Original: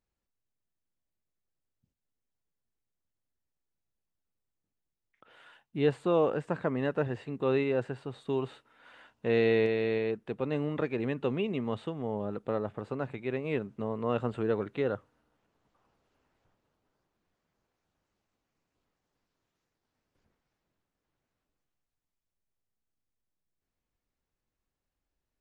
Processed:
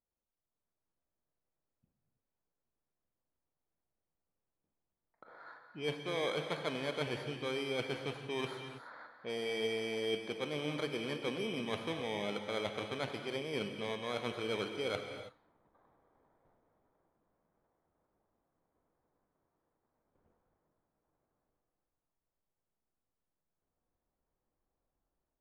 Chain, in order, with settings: bit-reversed sample order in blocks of 16 samples; treble shelf 2.3 kHz +7.5 dB; reverse; compression 8:1, threshold -36 dBFS, peak gain reduction 17 dB; reverse; low-pass 2.9 kHz 12 dB/octave; bass shelf 430 Hz -11.5 dB; level-controlled noise filter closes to 870 Hz, open at -45 dBFS; level rider gain up to 9 dB; on a send: reverberation, pre-delay 3 ms, DRR 5 dB

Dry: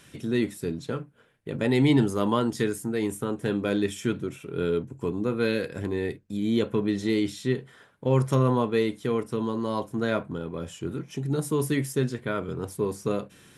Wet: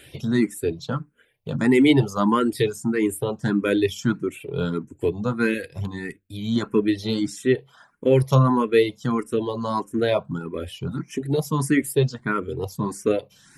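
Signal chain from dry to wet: reverb removal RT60 0.73 s; 5.54–6.56 s: peaking EQ 500 Hz -8 dB 1.9 oct; barber-pole phaser +1.6 Hz; trim +8.5 dB

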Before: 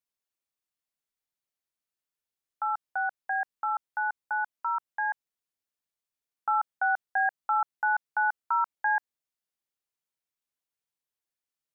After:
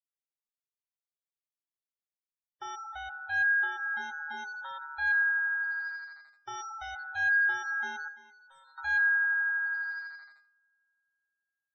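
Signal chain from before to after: feedback echo behind a high-pass 84 ms, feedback 84%, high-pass 1.7 kHz, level -9.5 dB; waveshaping leveller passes 5; peak limiter -24.5 dBFS, peak gain reduction 8.5 dB; 8.08–8.78 s: feedback comb 520 Hz, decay 0.42 s, mix 90%; spectral gate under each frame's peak -20 dB strong; feedback comb 410 Hz, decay 0.45 s, mix 90%; trim +5.5 dB

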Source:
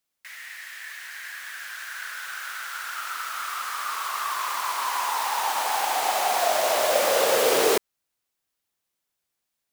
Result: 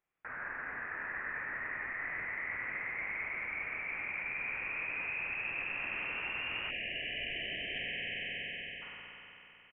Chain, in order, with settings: resonant low shelf 790 Hz -7.5 dB, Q 1.5; spring tank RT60 3.4 s, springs 46 ms, chirp 65 ms, DRR 2 dB; reverse; compression 6:1, threshold -35 dBFS, peak gain reduction 15 dB; reverse; frequency inversion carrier 3.5 kHz; on a send: delay 97 ms -7.5 dB; on the sum: spectral selection erased 6.71–8.82 s, 740–1600 Hz; trim -1.5 dB

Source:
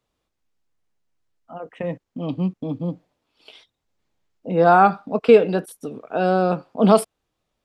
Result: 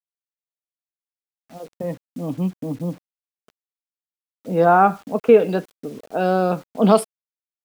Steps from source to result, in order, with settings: level-controlled noise filter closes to 370 Hz, open at -14.5 dBFS; 4.65–5.40 s: boxcar filter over 9 samples; bit crusher 8-bit

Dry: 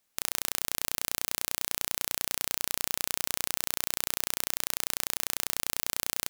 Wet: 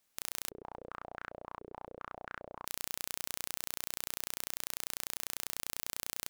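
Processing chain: peak limiter -8.5 dBFS, peak gain reduction 7 dB; 0.49–2.65 s: step-sequenced low-pass 7.3 Hz 420–1500 Hz; trim -1 dB

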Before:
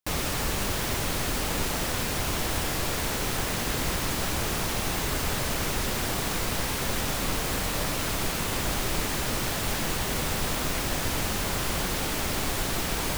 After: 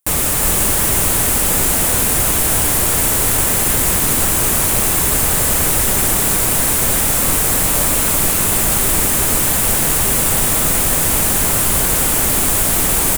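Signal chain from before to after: resonant high shelf 6.7 kHz +9.5 dB, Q 1.5; on a send: delay 362 ms -5 dB; on the sum: trim +8 dB

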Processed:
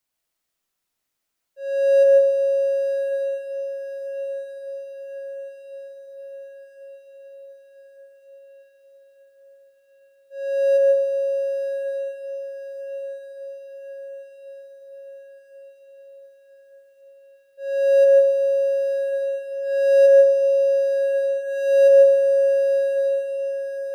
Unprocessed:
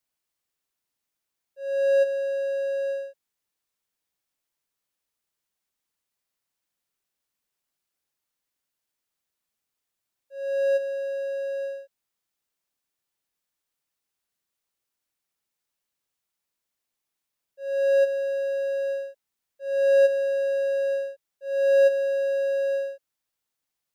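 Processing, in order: echo that smears into a reverb 1168 ms, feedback 60%, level -8.5 dB; algorithmic reverb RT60 0.57 s, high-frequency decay 0.4×, pre-delay 110 ms, DRR 1.5 dB; trim +2.5 dB

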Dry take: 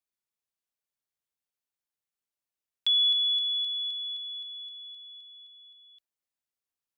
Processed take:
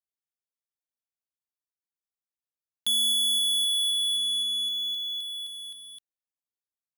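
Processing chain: waveshaping leveller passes 5; peaking EQ 2.4 kHz -6.5 dB 1.2 oct

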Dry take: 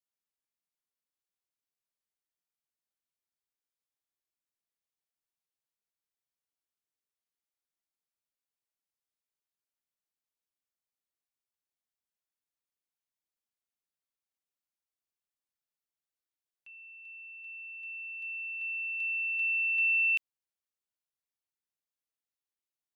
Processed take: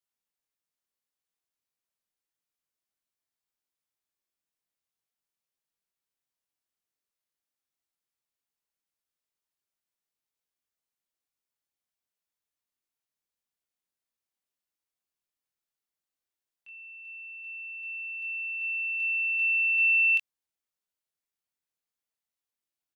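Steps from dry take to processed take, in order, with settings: doubling 22 ms -3.5 dB

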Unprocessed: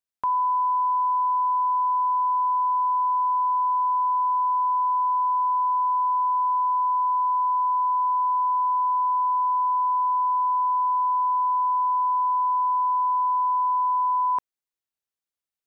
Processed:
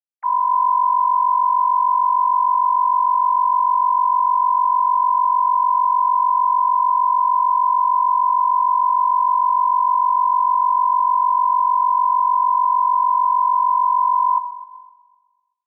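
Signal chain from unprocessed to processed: formants replaced by sine waves; peaking EQ 820 Hz +9.5 dB 2.7 oct; on a send: echo whose repeats swap between lows and highs 127 ms, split 990 Hz, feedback 51%, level -9 dB; on the sum: simulated room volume 670 m³, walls mixed, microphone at 0.52 m; trim -4.5 dB

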